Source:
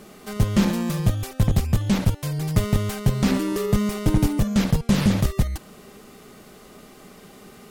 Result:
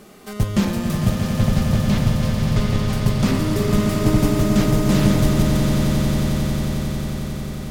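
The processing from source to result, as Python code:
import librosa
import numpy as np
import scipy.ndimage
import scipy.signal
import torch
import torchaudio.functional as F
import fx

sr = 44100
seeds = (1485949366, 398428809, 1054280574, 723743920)

p1 = fx.cheby1_lowpass(x, sr, hz=4900.0, order=2, at=(1.16, 2.93))
y = p1 + fx.echo_swell(p1, sr, ms=90, loudest=8, wet_db=-9, dry=0)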